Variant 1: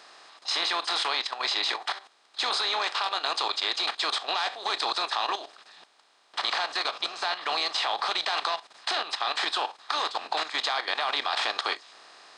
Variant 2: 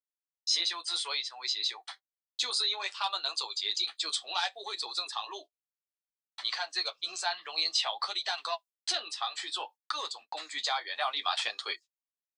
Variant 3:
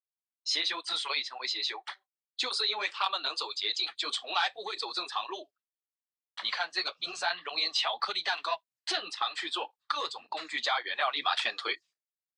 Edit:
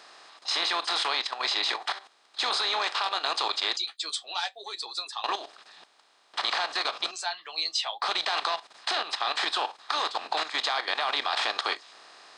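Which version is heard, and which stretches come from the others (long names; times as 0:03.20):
1
0:03.77–0:05.24: punch in from 2
0:07.11–0:08.02: punch in from 2
not used: 3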